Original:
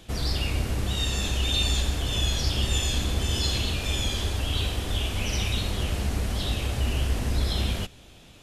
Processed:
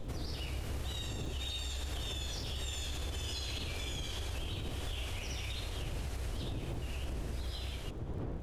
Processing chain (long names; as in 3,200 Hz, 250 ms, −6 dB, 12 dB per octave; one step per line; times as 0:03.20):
source passing by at 0:03.07, 9 m/s, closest 3.2 metres
wind on the microphone 200 Hz −42 dBFS
downward compressor, threshold −40 dBFS, peak gain reduction 18 dB
parametric band 200 Hz −9.5 dB 0.76 octaves
brickwall limiter −39.5 dBFS, peak gain reduction 8 dB
surface crackle 51 per second −58 dBFS
level +9.5 dB